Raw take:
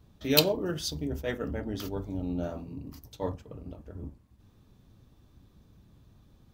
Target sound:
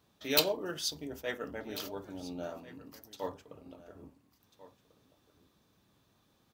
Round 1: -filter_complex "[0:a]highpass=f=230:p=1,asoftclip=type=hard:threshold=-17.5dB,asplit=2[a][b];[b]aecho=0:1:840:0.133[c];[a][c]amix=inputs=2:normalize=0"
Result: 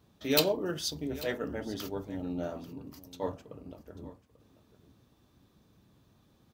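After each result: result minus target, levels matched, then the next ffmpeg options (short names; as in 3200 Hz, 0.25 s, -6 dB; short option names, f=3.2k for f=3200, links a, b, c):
echo 0.553 s early; 250 Hz band +4.5 dB
-filter_complex "[0:a]highpass=f=230:p=1,asoftclip=type=hard:threshold=-17.5dB,asplit=2[a][b];[b]aecho=0:1:1393:0.133[c];[a][c]amix=inputs=2:normalize=0"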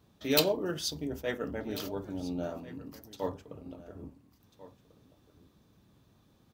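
250 Hz band +4.5 dB
-filter_complex "[0:a]highpass=f=700:p=1,asoftclip=type=hard:threshold=-17.5dB,asplit=2[a][b];[b]aecho=0:1:1393:0.133[c];[a][c]amix=inputs=2:normalize=0"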